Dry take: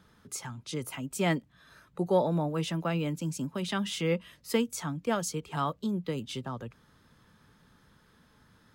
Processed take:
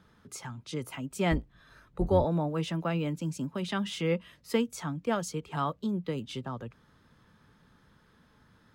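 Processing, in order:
0:01.31–0:02.25: sub-octave generator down 2 octaves, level +1 dB
high-shelf EQ 5,300 Hz −7.5 dB

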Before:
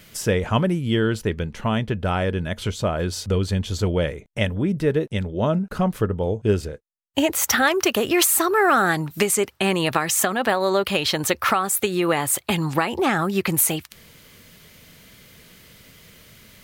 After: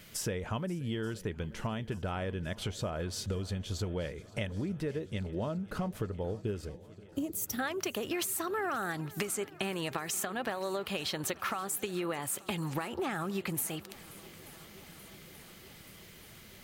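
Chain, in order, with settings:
0:06.69–0:07.59: drawn EQ curve 320 Hz 0 dB, 1,400 Hz −25 dB, 11,000 Hz −2 dB
downward compressor, threshold −27 dBFS, peak gain reduction 13 dB
feedback echo with a long and a short gap by turns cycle 881 ms, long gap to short 1.5 to 1, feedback 67%, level −21.5 dB
level −5 dB

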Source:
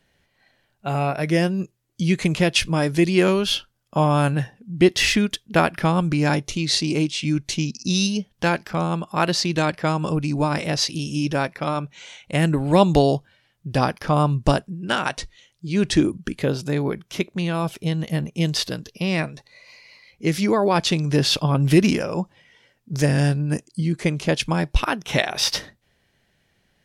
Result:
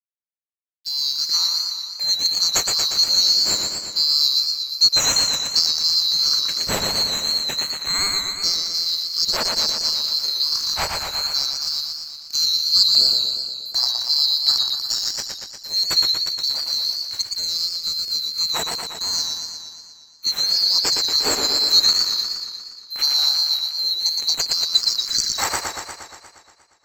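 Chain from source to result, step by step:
neighbouring bands swapped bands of 4,000 Hz
dead-zone distortion −37 dBFS
feedback echo with a swinging delay time 118 ms, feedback 67%, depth 89 cents, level −4 dB
level −1 dB

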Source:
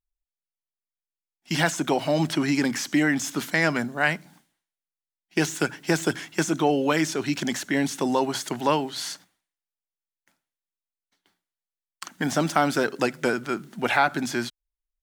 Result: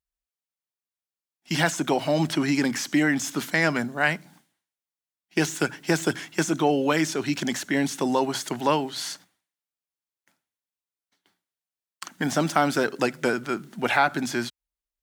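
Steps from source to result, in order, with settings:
high-pass filter 44 Hz

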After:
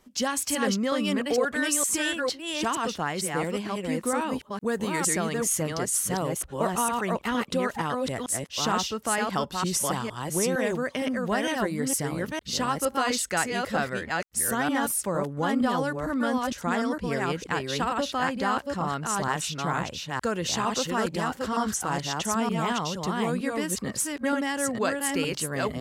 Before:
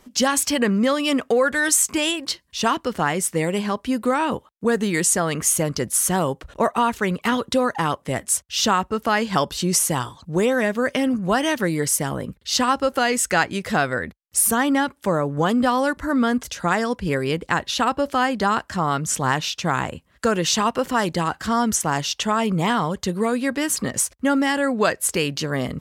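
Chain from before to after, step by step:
delay that plays each chunk backwards 459 ms, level −2 dB
0:04.33–0:05.07: high-shelf EQ 11,000 Hz +8 dB
level −8 dB

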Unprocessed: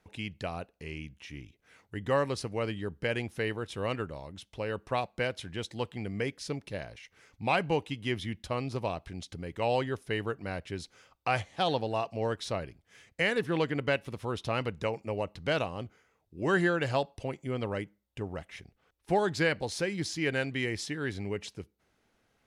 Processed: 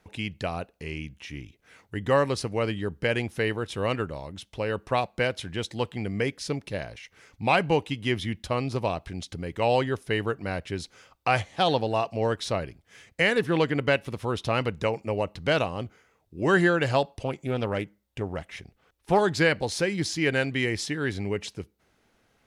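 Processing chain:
0:17.14–0:19.21: highs frequency-modulated by the lows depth 0.26 ms
level +5.5 dB

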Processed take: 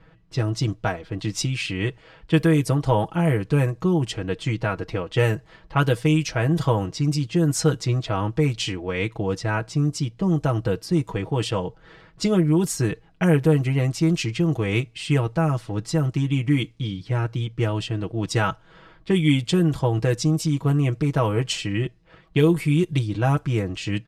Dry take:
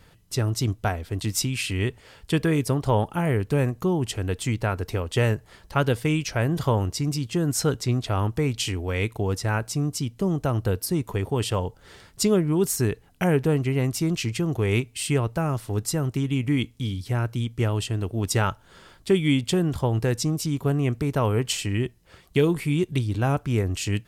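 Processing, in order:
comb filter 6.2 ms, depth 74%
low-pass that shuts in the quiet parts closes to 2,200 Hz, open at −14.5 dBFS

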